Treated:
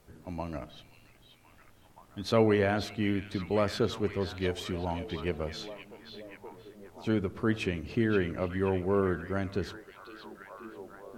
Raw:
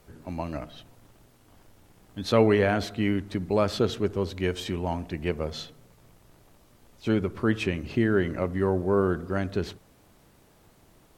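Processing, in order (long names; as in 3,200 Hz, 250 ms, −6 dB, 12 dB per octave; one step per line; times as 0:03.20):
echo through a band-pass that steps 527 ms, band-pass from 3,100 Hz, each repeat −0.7 octaves, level −6 dB
level −4 dB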